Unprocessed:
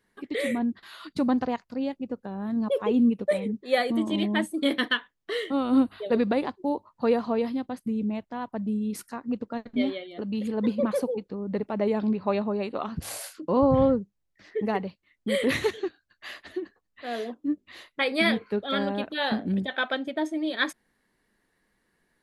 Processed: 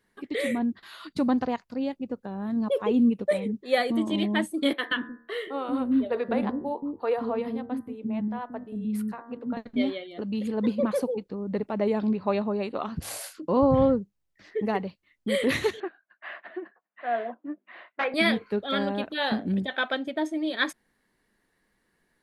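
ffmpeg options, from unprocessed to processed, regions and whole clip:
-filter_complex "[0:a]asettb=1/sr,asplit=3[a][b][c];[a]atrim=end=4.734[d];[b]atrim=start=4.73:end=9.57,asetpts=PTS-STARTPTS,afade=t=in:d=0.004:c=qsin,afade=t=out:st=4.836:d=0.004:c=qsin,equalizer=f=6.1k:t=o:w=1.2:g=-14.5,bandreject=f=77.7:t=h:w=4,bandreject=f=155.4:t=h:w=4,bandreject=f=233.1:t=h:w=4,bandreject=f=310.8:t=h:w=4,bandreject=f=388.5:t=h:w=4,bandreject=f=466.2:t=h:w=4,bandreject=f=543.9:t=h:w=4,bandreject=f=621.6:t=h:w=4,bandreject=f=699.3:t=h:w=4,bandreject=f=777:t=h:w=4,bandreject=f=854.7:t=h:w=4,bandreject=f=932.4:t=h:w=4,bandreject=f=1.0101k:t=h:w=4,bandreject=f=1.0878k:t=h:w=4,bandreject=f=1.1655k:t=h:w=4,bandreject=f=1.2432k:t=h:w=4,bandreject=f=1.3209k:t=h:w=4,bandreject=f=1.3986k:t=h:w=4,bandreject=f=1.4763k:t=h:w=4,bandreject=f=1.554k:t=h:w=4,bandreject=f=1.6317k:t=h:w=4,bandreject=f=1.7094k:t=h:w=4,bandreject=f=1.7871k:t=h:w=4,bandreject=f=1.8648k:t=h:w=4,bandreject=f=1.9425k:t=h:w=4,bandreject=f=2.0202k:t=h:w=4,acrossover=split=350[e][f];[e]adelay=180[g];[g][f]amix=inputs=2:normalize=0,atrim=end_sample=213444[h];[c]atrim=start=9.566[i];[d][h]acrossfade=d=0.004:c1=hsin:c2=qsin[j];[j][i]acrossfade=d=0.004:c1=qsin:c2=hsin,asettb=1/sr,asplit=3[k][l][m];[k]atrim=end=15.804[n];[l]atrim=start=15.8:end=18.14,asetpts=PTS-STARTPTS,afade=t=in:d=0.004:c=qsin,afade=t=out:st=2.336:d=0.004:c=qsin,aeval=exprs='(mod(7.5*val(0)+1,2)-1)/7.5':c=same,highpass=f=220:w=0.5412,highpass=f=220:w=1.3066,equalizer=f=280:t=q:w=4:g=-9,equalizer=f=430:t=q:w=4:g=-6,equalizer=f=680:t=q:w=4:g=9,equalizer=f=1k:t=q:w=4:g=4,equalizer=f=1.5k:t=q:w=4:g=6,lowpass=f=2.5k:w=0.5412,lowpass=f=2.5k:w=1.3066[o];[m]atrim=start=18.136[p];[n][o]acrossfade=d=0.004:c1=hsin:c2=qsin[q];[q][p]acrossfade=d=0.004:c1=qsin:c2=hsin"

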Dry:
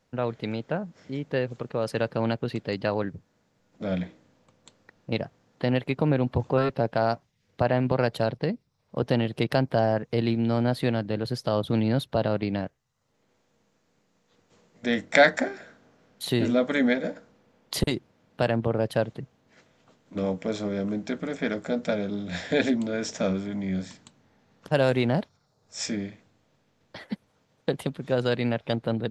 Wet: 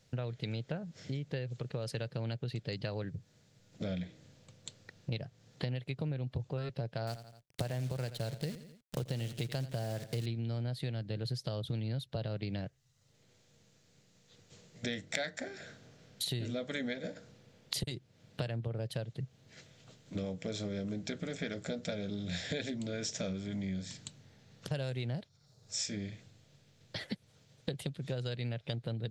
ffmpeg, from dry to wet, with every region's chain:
-filter_complex "[0:a]asettb=1/sr,asplit=3[a][b][c];[a]atrim=end=7.074[d];[b]atrim=start=7.07:end=10.26,asetpts=PTS-STARTPTS,afade=t=in:d=0.004:c=qsin,afade=t=out:st=3.186:d=0.004:c=qsin,acrusher=bits=7:dc=4:mix=0:aa=0.000001,aecho=1:1:85|170|255:0.168|0.0604|0.0218,atrim=end_sample=140679[e];[c]atrim=start=10.256[f];[d][e]acrossfade=d=0.004:c1=hsin:c2=qsin[g];[g][f]acrossfade=d=0.004:c1=qsin:c2=hsin,equalizer=f=125:t=o:w=1:g=9,equalizer=f=250:t=o:w=1:g=-6,equalizer=f=1k:t=o:w=1:g=-9,equalizer=f=4k:t=o:w=1:g=5,equalizer=f=8k:t=o:w=1:g=5,acompressor=threshold=-37dB:ratio=6,volume=2dB"

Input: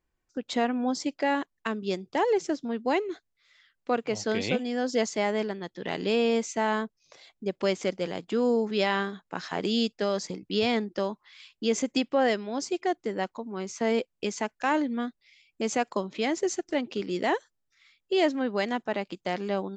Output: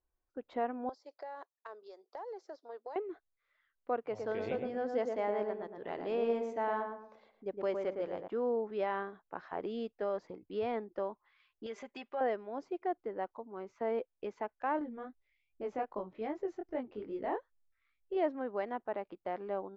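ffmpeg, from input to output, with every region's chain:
-filter_complex "[0:a]asettb=1/sr,asplit=3[a][b][c];[a]atrim=end=0.894[d];[b]atrim=start=0.89:end=2.96,asetpts=PTS-STARTPTS,afade=t=in:d=0.004:c=qsin,afade=t=out:st=2.066:d=0.004:c=qsin,highpass=f=460:w=0.5412,highpass=f=460:w=1.3066,highshelf=f=3.6k:t=q:w=3:g=9,acompressor=threshold=-32dB:ratio=16:attack=3.2:release=140:knee=1:detection=peak[e];[c]atrim=start=2.956[f];[d][e]acrossfade=d=0.004:c1=hsin:c2=qsin[g];[g][f]acrossfade=d=0.004:c1=qsin:c2=hsin,asettb=1/sr,asplit=3[h][i][j];[h]atrim=end=4.024[k];[i]atrim=start=4.02:end=8.28,asetpts=PTS-STARTPTS,afade=t=in:d=0.004:c=qsin,afade=t=out:st=4.256:d=0.004:c=qsin,aemphasis=mode=production:type=50fm,asplit=2[l][m];[m]adelay=112,lowpass=f=1.3k:p=1,volume=-3.5dB,asplit=2[n][o];[o]adelay=112,lowpass=f=1.3k:p=1,volume=0.39,asplit=2[p][q];[q]adelay=112,lowpass=f=1.3k:p=1,volume=0.39,asplit=2[r][s];[s]adelay=112,lowpass=f=1.3k:p=1,volume=0.39,asplit=2[t][u];[u]adelay=112,lowpass=f=1.3k:p=1,volume=0.39[v];[l][n][p][r][t][v]amix=inputs=6:normalize=0,atrim=end_sample=187866[w];[j]atrim=start=8.276[x];[k][w]acrossfade=d=0.004:c1=hsin:c2=qsin[y];[y][x]acrossfade=d=0.004:c1=qsin:c2=hsin,asettb=1/sr,asplit=3[z][aa][ab];[z]atrim=end=11.664[ac];[aa]atrim=start=11.66:end=12.21,asetpts=PTS-STARTPTS,afade=t=in:d=0.004:c=qsin,afade=t=out:st=0.546:d=0.004:c=qsin,aecho=1:1:5:0.72,atrim=end_sample=24255,acompressor=threshold=-27dB:ratio=2:attack=3.2:release=140:knee=1:detection=peak,tiltshelf=f=930:g=-8[ad];[ab]atrim=start=12.206[ae];[ac][ad]acrossfade=d=0.004:c1=hsin:c2=qsin[af];[af][ae]acrossfade=d=0.004:c1=qsin:c2=hsin,asettb=1/sr,asplit=3[ag][ah][ai];[ag]atrim=end=14.794[aj];[ah]atrim=start=14.79:end=18.17,asetpts=PTS-STARTPTS,afade=t=in:d=0.004:c=qsin,afade=t=out:st=3.376:d=0.004:c=qsin,lowshelf=f=170:g=11,flanger=delay=19:depth=4.5:speed=2.5[ak];[ai]atrim=start=18.166[al];[aj][ak]acrossfade=d=0.004:c1=hsin:c2=qsin[am];[am][al]acrossfade=d=0.004:c1=qsin:c2=hsin,lowpass=1.1k,equalizer=f=180:w=0.91:g=-13,volume=-4dB"

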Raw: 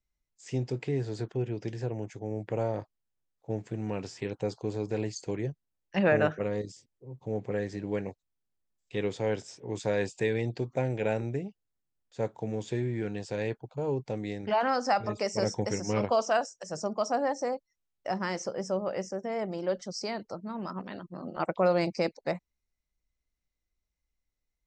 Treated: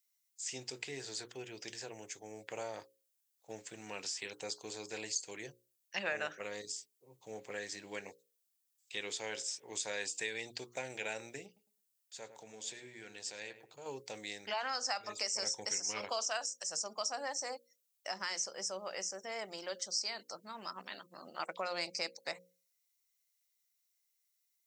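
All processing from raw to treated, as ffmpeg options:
-filter_complex "[0:a]asettb=1/sr,asplit=3[a][b][c];[a]atrim=end=11.464[d];[b]atrim=start=11.46:end=13.86,asetpts=PTS-STARTPTS,afade=t=in:d=0.004:c=qsin,afade=t=out:st=2.396:d=0.004:c=qsin,acompressor=threshold=-47dB:ratio=1.5:attack=3.2:release=140:knee=1:detection=peak,asplit=2[e][f];[f]adelay=105,lowpass=f=1.6k:p=1,volume=-10dB,asplit=2[g][h];[h]adelay=105,lowpass=f=1.6k:p=1,volume=0.3,asplit=2[i][j];[j]adelay=105,lowpass=f=1.6k:p=1,volume=0.3[k];[e][g][i][k]amix=inputs=4:normalize=0,atrim=end_sample=105840[l];[c]atrim=start=13.856[m];[d][l]acrossfade=d=0.004:c1=hsin:c2=qsin[n];[n][m]acrossfade=d=0.004:c1=qsin:c2=hsin,aderivative,bandreject=f=60:t=h:w=6,bandreject=f=120:t=h:w=6,bandreject=f=180:t=h:w=6,bandreject=f=240:t=h:w=6,bandreject=f=300:t=h:w=6,bandreject=f=360:t=h:w=6,bandreject=f=420:t=h:w=6,bandreject=f=480:t=h:w=6,bandreject=f=540:t=h:w=6,acompressor=threshold=-49dB:ratio=2,volume=12dB"

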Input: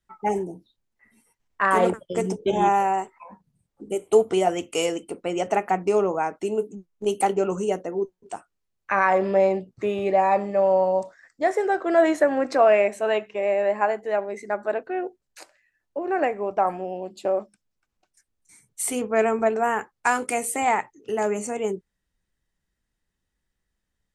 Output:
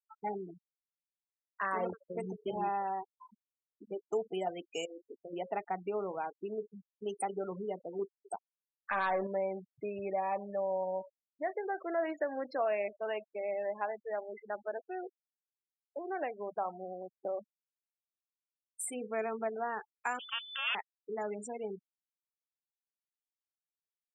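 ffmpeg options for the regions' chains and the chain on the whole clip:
-filter_complex "[0:a]asettb=1/sr,asplit=3[a][b][c];[a]atrim=end=4.854[d];[b]atrim=start=4.85:end=5.33,asetpts=PTS-STARTPTS,afade=t=in:d=0.004:c=qsin,afade=t=out:st=0.476:d=0.004:c=qsin,equalizer=f=3.1k:w=0.46:g=-7.5,acompressor=threshold=-30dB:ratio=16:attack=3.2:release=140:knee=1:detection=peak,asplit=2[e][f];[f]adelay=26,volume=-10.5dB[g];[e][g]amix=inputs=2:normalize=0,atrim=end_sample=21168[h];[c]atrim=start=5.326[i];[d][h]acrossfade=d=0.004:c1=hsin:c2=qsin[j];[j][i]acrossfade=d=0.004:c1=qsin:c2=hsin,asettb=1/sr,asplit=3[k][l][m];[k]atrim=end=7.994[n];[l]atrim=start=7.99:end=9.27,asetpts=PTS-STARTPTS,afade=t=in:d=0.004:c=qsin,afade=t=out:st=1.276:d=0.004:c=qsin,acontrast=41,aeval=exprs='(tanh(2.51*val(0)+0.05)-tanh(0.05))/2.51':c=same[o];[m]atrim=start=9.266[p];[n][o]acrossfade=d=0.004:c1=hsin:c2=qsin[q];[q][p]acrossfade=d=0.004:c1=qsin:c2=hsin,asettb=1/sr,asplit=3[r][s][t];[r]atrim=end=20.194[u];[s]atrim=start=20.19:end=20.75,asetpts=PTS-STARTPTS,afade=t=in:d=0.004:c=qsin,afade=t=out:st=0.556:d=0.004:c=qsin,acrusher=bits=4:dc=4:mix=0:aa=0.000001,lowpass=f=3k:t=q:w=0.5098,lowpass=f=3k:t=q:w=0.6013,lowpass=f=3k:t=q:w=0.9,lowpass=f=3k:t=q:w=2.563,afreqshift=-3500[v];[t]atrim=start=20.746[w];[u][v]acrossfade=d=0.004:c1=hsin:c2=qsin[x];[x][w]acrossfade=d=0.004:c1=qsin:c2=hsin,equalizer=f=290:w=1.1:g=-4,afftfilt=real='re*gte(hypot(re,im),0.0501)':imag='im*gte(hypot(re,im),0.0501)':win_size=1024:overlap=0.75,acompressor=threshold=-32dB:ratio=1.5,volume=-8dB"

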